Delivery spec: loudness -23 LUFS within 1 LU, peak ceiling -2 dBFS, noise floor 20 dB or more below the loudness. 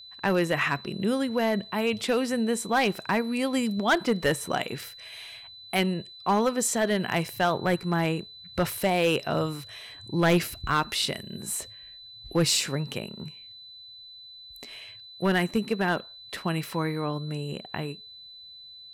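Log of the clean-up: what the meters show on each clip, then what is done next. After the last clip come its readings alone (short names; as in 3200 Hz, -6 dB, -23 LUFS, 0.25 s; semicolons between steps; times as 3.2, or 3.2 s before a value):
clipped 0.5%; flat tops at -16.0 dBFS; steady tone 4000 Hz; tone level -44 dBFS; loudness -27.0 LUFS; peak -16.0 dBFS; loudness target -23.0 LUFS
-> clip repair -16 dBFS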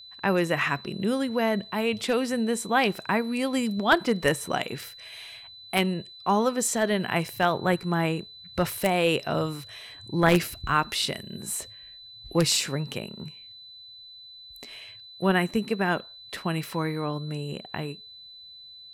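clipped 0.0%; steady tone 4000 Hz; tone level -44 dBFS
-> notch 4000 Hz, Q 30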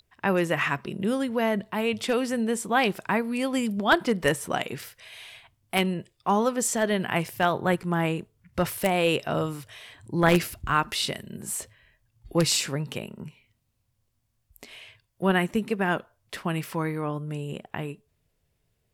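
steady tone none; loudness -26.5 LUFS; peak -7.0 dBFS; loudness target -23.0 LUFS
-> gain +3.5 dB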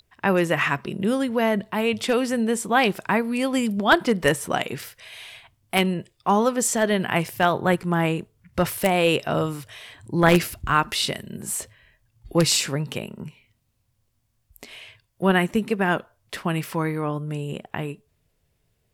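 loudness -23.0 LUFS; peak -3.5 dBFS; noise floor -70 dBFS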